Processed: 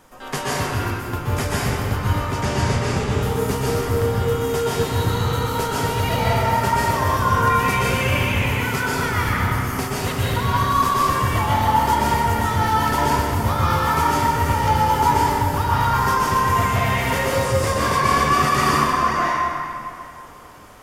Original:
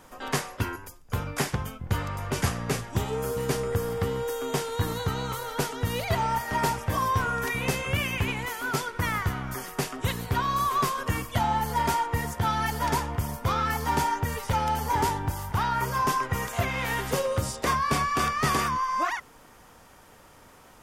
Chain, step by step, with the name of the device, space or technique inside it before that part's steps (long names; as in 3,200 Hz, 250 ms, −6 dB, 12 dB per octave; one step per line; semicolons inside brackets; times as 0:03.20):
0:02.23–0:03.16: low-pass filter 7,700 Hz 12 dB per octave
stairwell (convolution reverb RT60 2.7 s, pre-delay 117 ms, DRR −7 dB)